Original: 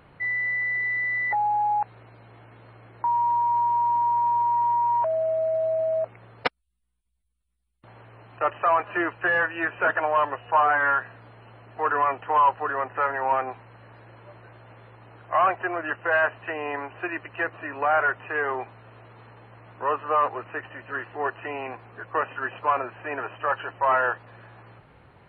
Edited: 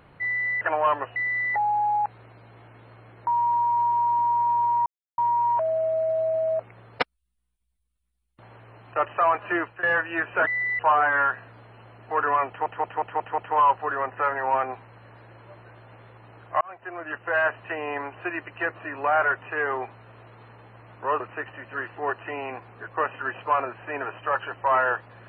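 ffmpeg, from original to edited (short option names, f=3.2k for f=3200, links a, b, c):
-filter_complex "[0:a]asplit=14[a][b][c][d][e][f][g][h][i][j][k][l][m][n];[a]atrim=end=0.612[o];[b]atrim=start=9.918:end=10.472[p];[c]atrim=start=0.928:end=4.63,asetpts=PTS-STARTPTS,afade=t=out:st=3.698:d=0.004:c=hsin,apad=pad_dur=0.32[q];[d]atrim=start=4.63:end=9.28,asetpts=PTS-STARTPTS,afade=t=in:d=0.004:c=hsin,afade=t=out:st=4.36:d=0.29:c=qsin:silence=0.11885[r];[e]atrim=start=9.28:end=9.922,asetpts=PTS-STARTPTS,afade=t=in:d=0.004:c=hsin:silence=0.11885[s];[f]atrim=start=0.608:end=0.932[t];[g]atrim=start=10.468:end=12.342[u];[h]atrim=start=12.158:end=12.342[v];[i]atrim=start=12.158:end=12.342[w];[j]atrim=start=12.158:end=12.342[x];[k]atrim=start=12.158:end=12.342[y];[l]atrim=start=12.158:end=15.39,asetpts=PTS-STARTPTS,afade=t=out:st=3.228:d=0.004:c=hsin[z];[m]atrim=start=15.39:end=19.982,asetpts=PTS-STARTPTS,afade=t=in:d=1.18:c=qsin[aa];[n]atrim=start=20.368[ab];[o][p]acrossfade=d=0.004:c1=hsin:c2=hsin[ac];[q][r][s]concat=n=3:v=0:a=1[ad];[ac][ad]acrossfade=d=0.004:c1=hsin:c2=hsin[ae];[ae][t]acrossfade=d=0.004:c1=hsin:c2=hsin[af];[af][u]acrossfade=d=0.004:c1=hsin:c2=hsin[ag];[ag][v]acrossfade=d=0.004:c1=hsin:c2=hsin[ah];[ah][w]acrossfade=d=0.004:c1=hsin:c2=hsin[ai];[ai][x]acrossfade=d=0.004:c1=hsin:c2=hsin[aj];[aj][y]acrossfade=d=0.004:c1=hsin:c2=hsin[ak];[z][aa]concat=n=2:v=0:a=1[al];[ak][al]acrossfade=d=0.004:c1=hsin:c2=hsin[am];[am][ab]acrossfade=d=0.004:c1=hsin:c2=hsin"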